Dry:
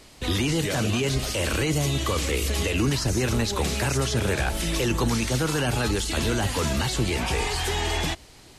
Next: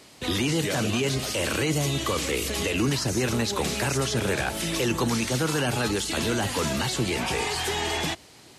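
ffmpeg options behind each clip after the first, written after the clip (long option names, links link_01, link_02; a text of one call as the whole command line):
ffmpeg -i in.wav -af "highpass=120" out.wav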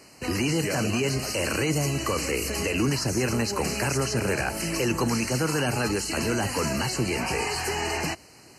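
ffmpeg -i in.wav -af "asuperstop=centerf=3500:order=12:qfactor=3.3" out.wav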